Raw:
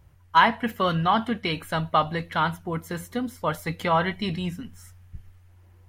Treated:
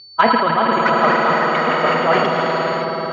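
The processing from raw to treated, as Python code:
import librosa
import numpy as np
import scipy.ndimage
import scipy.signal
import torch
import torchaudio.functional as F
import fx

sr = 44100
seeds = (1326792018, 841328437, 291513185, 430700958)

p1 = scipy.signal.sosfilt(scipy.signal.butter(2, 230.0, 'highpass', fs=sr, output='sos'), x)
p2 = fx.env_lowpass(p1, sr, base_hz=370.0, full_db=-17.0)
p3 = p2 + 10.0 ** (-36.0 / 20.0) * np.sin(2.0 * np.pi * 4500.0 * np.arange(len(p2)) / sr)
p4 = fx.level_steps(p3, sr, step_db=14)
p5 = p3 + (p4 * 10.0 ** (1.5 / 20.0))
p6 = fx.small_body(p5, sr, hz=(430.0, 630.0, 1300.0, 2400.0), ring_ms=40, db=9)
p7 = p6 + fx.echo_swell(p6, sr, ms=103, loudest=8, wet_db=-8, dry=0)
p8 = np.clip(p7, -10.0 ** (-0.5 / 20.0), 10.0 ** (-0.5 / 20.0))
p9 = fx.stretch_vocoder(p8, sr, factor=0.53)
p10 = fx.echo_pitch(p9, sr, ms=730, semitones=7, count=3, db_per_echo=-6.0)
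p11 = fx.air_absorb(p10, sr, metres=190.0)
p12 = fx.sustainer(p11, sr, db_per_s=26.0)
y = p12 * 10.0 ** (-1.0 / 20.0)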